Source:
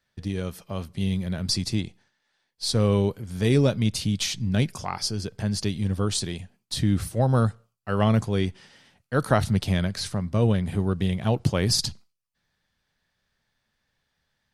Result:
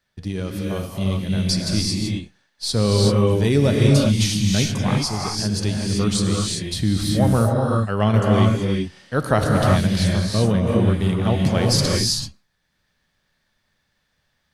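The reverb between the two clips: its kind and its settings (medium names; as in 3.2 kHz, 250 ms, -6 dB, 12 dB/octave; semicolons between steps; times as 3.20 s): gated-style reverb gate 410 ms rising, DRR -1.5 dB; trim +2 dB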